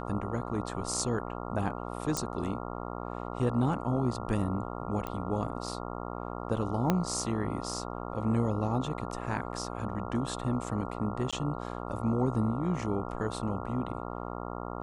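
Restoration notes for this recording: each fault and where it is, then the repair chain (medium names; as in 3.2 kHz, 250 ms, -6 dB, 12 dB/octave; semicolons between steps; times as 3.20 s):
buzz 60 Hz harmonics 23 -38 dBFS
2.17 s: pop -16 dBFS
5.07 s: pop -21 dBFS
6.90 s: pop -12 dBFS
11.31–11.33 s: dropout 16 ms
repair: de-click; de-hum 60 Hz, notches 23; interpolate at 11.31 s, 16 ms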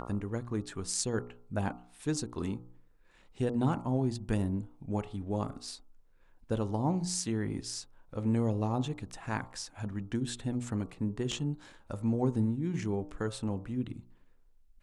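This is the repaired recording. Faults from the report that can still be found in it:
2.17 s: pop
6.90 s: pop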